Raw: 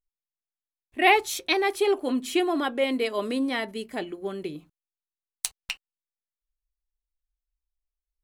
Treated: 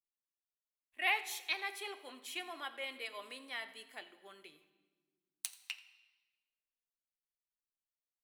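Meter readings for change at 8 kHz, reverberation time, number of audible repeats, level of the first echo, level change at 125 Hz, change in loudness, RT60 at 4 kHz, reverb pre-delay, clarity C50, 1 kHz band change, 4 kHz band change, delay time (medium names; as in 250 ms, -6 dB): -12.0 dB, 1.4 s, 1, -19.5 dB, under -30 dB, -14.0 dB, 1.2 s, 3 ms, 13.0 dB, -17.0 dB, -10.5 dB, 85 ms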